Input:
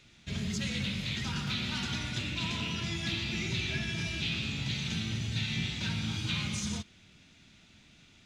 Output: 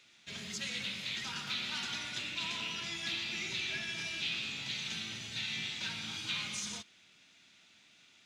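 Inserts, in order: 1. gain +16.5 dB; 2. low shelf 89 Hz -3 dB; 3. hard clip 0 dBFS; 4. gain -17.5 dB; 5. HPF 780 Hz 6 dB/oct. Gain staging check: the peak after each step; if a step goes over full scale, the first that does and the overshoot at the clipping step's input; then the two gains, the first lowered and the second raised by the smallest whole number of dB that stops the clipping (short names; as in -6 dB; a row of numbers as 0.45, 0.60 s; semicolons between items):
-3.0, -3.0, -3.0, -20.5, -23.5 dBFS; no overload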